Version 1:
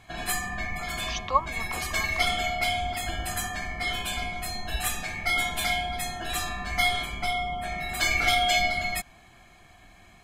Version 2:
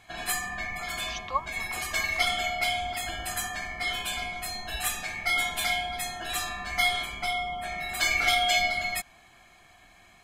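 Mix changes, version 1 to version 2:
speech −4.5 dB
master: add low-shelf EQ 390 Hz −8 dB

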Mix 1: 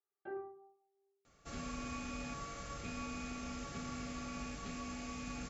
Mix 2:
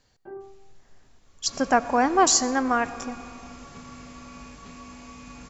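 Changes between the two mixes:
speech: unmuted
first sound: add spectral tilt −3 dB per octave
master: remove Butterworth band-reject 1,000 Hz, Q 4.5

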